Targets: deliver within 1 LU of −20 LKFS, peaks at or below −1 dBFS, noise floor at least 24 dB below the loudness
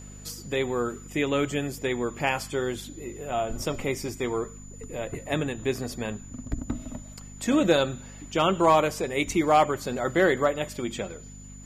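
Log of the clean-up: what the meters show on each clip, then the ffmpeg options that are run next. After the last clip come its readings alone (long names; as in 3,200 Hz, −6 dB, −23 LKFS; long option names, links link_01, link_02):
mains hum 50 Hz; hum harmonics up to 250 Hz; level of the hum −42 dBFS; interfering tone 7,000 Hz; level of the tone −48 dBFS; integrated loudness −27.0 LKFS; sample peak −9.5 dBFS; target loudness −20.0 LKFS
→ -af "bandreject=frequency=50:width_type=h:width=4,bandreject=frequency=100:width_type=h:width=4,bandreject=frequency=150:width_type=h:width=4,bandreject=frequency=200:width_type=h:width=4,bandreject=frequency=250:width_type=h:width=4"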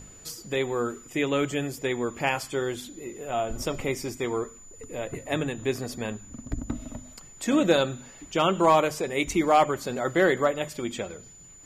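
mains hum none found; interfering tone 7,000 Hz; level of the tone −48 dBFS
→ -af "bandreject=frequency=7000:width=30"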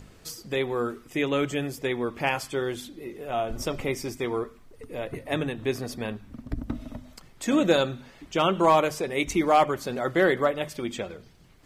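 interfering tone none found; integrated loudness −27.0 LKFS; sample peak −9.5 dBFS; target loudness −20.0 LKFS
→ -af "volume=7dB"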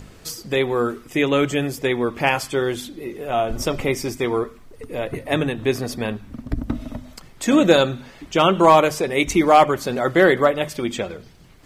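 integrated loudness −20.0 LKFS; sample peak −2.5 dBFS; background noise floor −46 dBFS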